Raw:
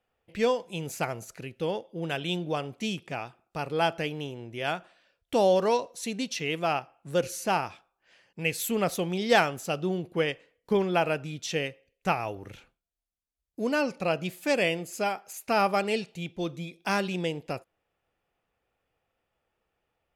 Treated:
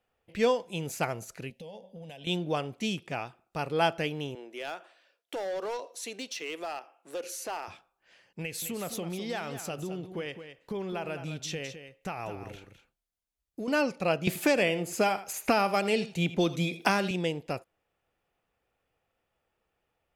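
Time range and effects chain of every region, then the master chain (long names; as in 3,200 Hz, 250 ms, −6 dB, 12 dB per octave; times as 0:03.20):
0:01.50–0:02.27: phaser with its sweep stopped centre 350 Hz, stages 6 + hum removal 190.3 Hz, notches 10 + downward compressor 10 to 1, threshold −41 dBFS
0:04.35–0:07.68: high-pass filter 310 Hz 24 dB per octave + downward compressor 2 to 1, threshold −36 dBFS + gain into a clipping stage and back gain 30 dB
0:08.41–0:13.68: downward compressor 5 to 1, threshold −32 dBFS + single-tap delay 210 ms −10 dB
0:14.27–0:17.11: single-tap delay 81 ms −16 dB + multiband upward and downward compressor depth 100%
whole clip: no processing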